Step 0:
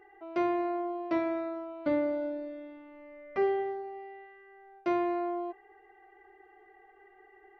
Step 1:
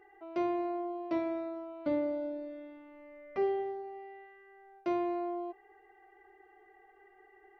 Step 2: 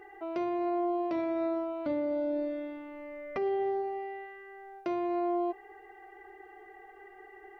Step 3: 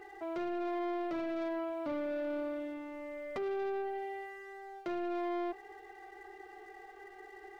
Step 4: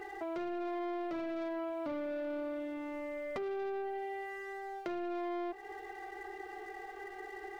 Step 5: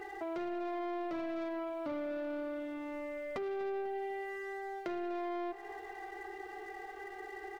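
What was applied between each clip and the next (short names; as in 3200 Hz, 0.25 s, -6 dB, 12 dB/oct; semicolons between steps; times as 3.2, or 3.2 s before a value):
dynamic EQ 1600 Hz, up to -7 dB, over -51 dBFS, Q 1.5; gain -2.5 dB
limiter -33.5 dBFS, peak gain reduction 12 dB; gain +9 dB
sample leveller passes 2; gain -7.5 dB
compressor 3:1, threshold -45 dBFS, peak gain reduction 8 dB; gain +6 dB
feedback echo 0.248 s, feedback 55%, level -17 dB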